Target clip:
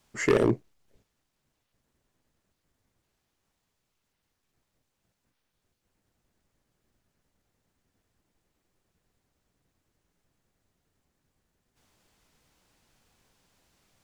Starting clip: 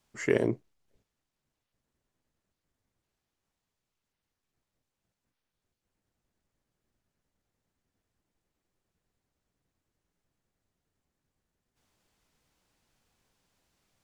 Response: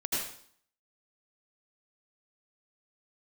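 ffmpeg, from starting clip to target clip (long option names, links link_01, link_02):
-af "asoftclip=type=hard:threshold=-22dB,volume=6.5dB"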